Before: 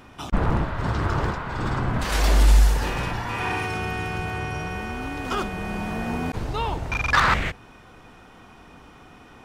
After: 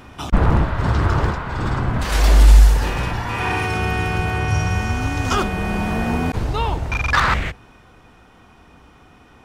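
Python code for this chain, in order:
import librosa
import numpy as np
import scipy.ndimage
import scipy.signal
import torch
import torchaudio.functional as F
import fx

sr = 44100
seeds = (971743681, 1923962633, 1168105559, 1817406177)

y = fx.peak_eq(x, sr, hz=66.0, db=5.0, octaves=1.3)
y = fx.rider(y, sr, range_db=4, speed_s=2.0)
y = fx.graphic_eq_15(y, sr, hz=(100, 400, 6300), db=(8, -4, 8), at=(4.48, 5.37))
y = F.gain(torch.from_numpy(y), 2.5).numpy()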